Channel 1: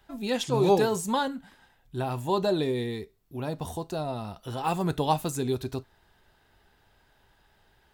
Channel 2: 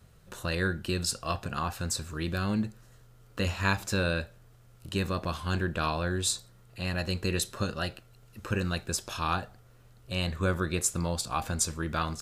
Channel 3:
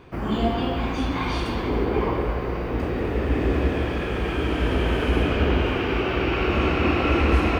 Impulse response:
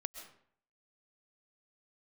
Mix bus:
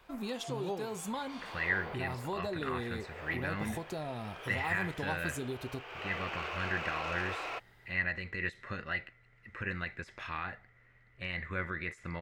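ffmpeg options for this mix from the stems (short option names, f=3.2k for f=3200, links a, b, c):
-filter_complex "[0:a]acompressor=threshold=-35dB:ratio=4,volume=-1.5dB,asplit=2[a][b];[1:a]aemphasis=mode=production:type=75kf,alimiter=limit=-18dB:level=0:latency=1:release=64,lowpass=f=2k:t=q:w=16,adelay=1100,volume=-10dB[c];[2:a]highpass=f=550:w=0.5412,highpass=f=550:w=1.3066,asoftclip=type=tanh:threshold=-21.5dB,volume=-10.5dB[d];[b]apad=whole_len=335094[e];[d][e]sidechaincompress=threshold=-46dB:ratio=4:attack=31:release=390[f];[a][c][f]amix=inputs=3:normalize=0"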